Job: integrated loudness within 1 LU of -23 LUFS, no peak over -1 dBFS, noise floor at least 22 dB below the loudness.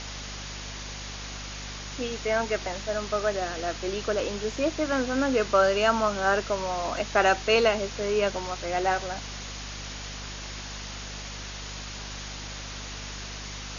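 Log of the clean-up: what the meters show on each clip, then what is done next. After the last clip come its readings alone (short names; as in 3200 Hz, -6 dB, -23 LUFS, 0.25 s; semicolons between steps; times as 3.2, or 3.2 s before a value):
hum 50 Hz; harmonics up to 250 Hz; hum level -39 dBFS; noise floor -38 dBFS; noise floor target -51 dBFS; loudness -28.5 LUFS; peak -9.0 dBFS; loudness target -23.0 LUFS
-> notches 50/100/150/200/250 Hz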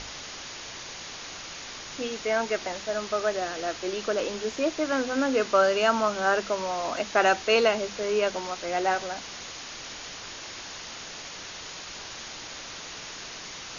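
hum none; noise floor -41 dBFS; noise floor target -51 dBFS
-> noise print and reduce 10 dB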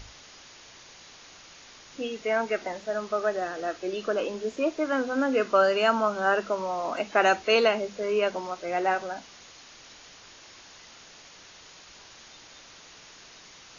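noise floor -50 dBFS; loudness -26.5 LUFS; peak -9.5 dBFS; loudness target -23.0 LUFS
-> gain +3.5 dB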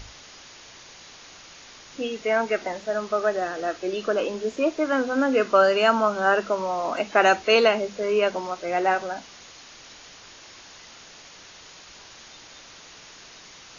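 loudness -23.0 LUFS; peak -6.0 dBFS; noise floor -47 dBFS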